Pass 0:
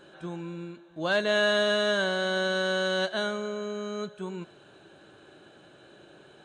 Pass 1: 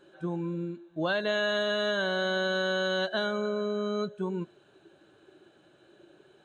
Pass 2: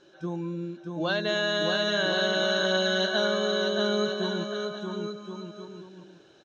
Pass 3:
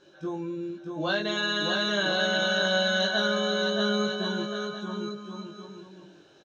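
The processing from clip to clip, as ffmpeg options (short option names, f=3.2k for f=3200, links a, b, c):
-af "afftdn=nr=13:nf=-39,acompressor=threshold=-31dB:ratio=5,volume=5dB"
-af "lowpass=f=5.6k:t=q:w=7.5,aecho=1:1:630|1071|1380|1596|1747:0.631|0.398|0.251|0.158|0.1"
-filter_complex "[0:a]asplit=2[a][b];[b]adelay=20,volume=-2.5dB[c];[a][c]amix=inputs=2:normalize=0,volume=-1.5dB"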